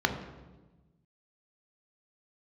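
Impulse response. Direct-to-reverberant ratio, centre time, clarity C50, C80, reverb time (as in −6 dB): 5.0 dB, 20 ms, 8.5 dB, 10.5 dB, 1.2 s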